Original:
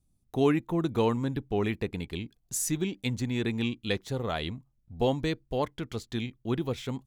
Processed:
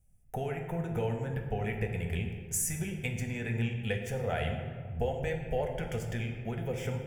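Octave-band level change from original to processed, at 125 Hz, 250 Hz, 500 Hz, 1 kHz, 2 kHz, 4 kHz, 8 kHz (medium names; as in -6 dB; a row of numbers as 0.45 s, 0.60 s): +0.5 dB, -8.0 dB, -4.0 dB, -4.0 dB, -0.5 dB, -8.5 dB, -0.5 dB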